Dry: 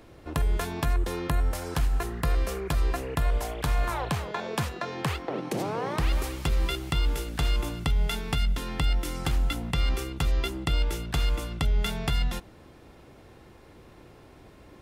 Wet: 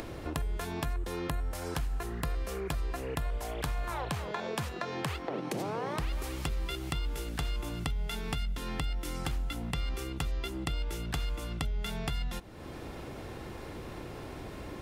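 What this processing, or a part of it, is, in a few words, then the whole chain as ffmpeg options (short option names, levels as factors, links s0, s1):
upward and downward compression: -af "acompressor=mode=upward:threshold=0.0501:ratio=2.5,acompressor=threshold=0.0501:ratio=6,volume=0.668"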